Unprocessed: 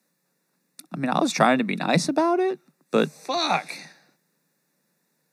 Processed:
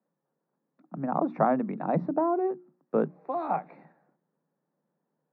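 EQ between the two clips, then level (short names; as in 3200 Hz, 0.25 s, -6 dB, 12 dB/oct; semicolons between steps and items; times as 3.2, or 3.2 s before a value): ladder low-pass 1300 Hz, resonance 20%; notches 60/120/180/240/300/360 Hz; 0.0 dB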